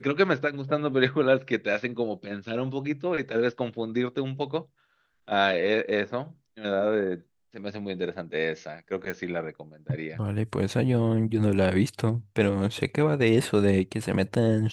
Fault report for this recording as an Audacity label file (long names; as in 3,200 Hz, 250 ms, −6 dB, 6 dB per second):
9.100000	9.100000	click −18 dBFS